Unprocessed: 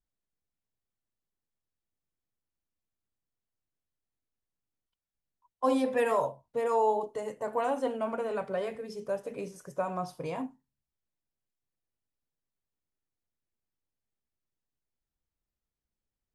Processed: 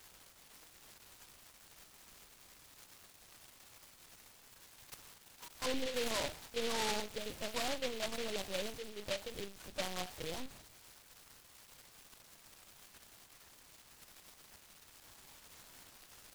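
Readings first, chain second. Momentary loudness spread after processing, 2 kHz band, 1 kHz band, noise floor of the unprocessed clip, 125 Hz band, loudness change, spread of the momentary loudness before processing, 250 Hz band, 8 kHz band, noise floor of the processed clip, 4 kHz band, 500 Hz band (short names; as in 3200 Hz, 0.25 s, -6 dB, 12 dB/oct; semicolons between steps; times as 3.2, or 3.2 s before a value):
20 LU, -1.0 dB, -12.0 dB, under -85 dBFS, -6.0 dB, -8.0 dB, 11 LU, -10.0 dB, +9.0 dB, -63 dBFS, +11.5 dB, -10.5 dB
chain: switching spikes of -22 dBFS; limiter -26.5 dBFS, peak gain reduction 11 dB; LPC vocoder at 8 kHz pitch kept; noise-modulated delay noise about 2900 Hz, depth 0.18 ms; gain -2 dB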